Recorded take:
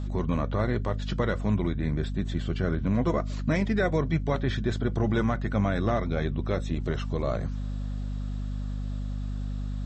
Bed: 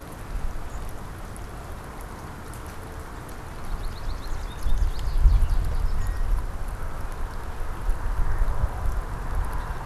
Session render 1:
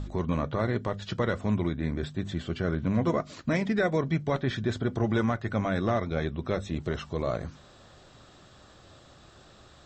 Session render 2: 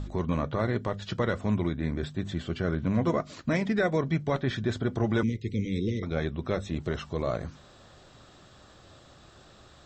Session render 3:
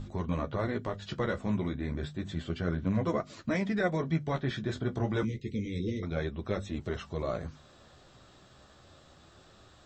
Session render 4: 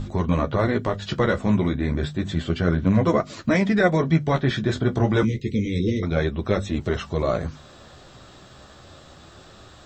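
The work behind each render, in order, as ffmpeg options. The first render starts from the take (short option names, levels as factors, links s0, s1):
-af "bandreject=f=50:t=h:w=4,bandreject=f=100:t=h:w=4,bandreject=f=150:t=h:w=4,bandreject=f=200:t=h:w=4,bandreject=f=250:t=h:w=4"
-filter_complex "[0:a]asettb=1/sr,asplit=3[s0][s1][s2];[s0]atrim=end=5.234[s3];[s1]atrim=start=5.23:end=6.03,asetpts=PTS-STARTPTS,afade=t=in:d=0.004:c=qsin,afade=t=out:st=0.796:d=0.004:c=qsin,asuperstop=centerf=1000:order=20:qfactor=0.64[s4];[s2]atrim=start=6.026[s5];[s3][s4]acrossfade=d=0.004:c1=hsin:c2=qsin[s6];[s6][s5]acrossfade=d=0.004:c1=qsin:c2=hsin"
-af "flanger=delay=8.8:depth=7.3:regen=-24:speed=0.3:shape=triangular"
-af "volume=3.35"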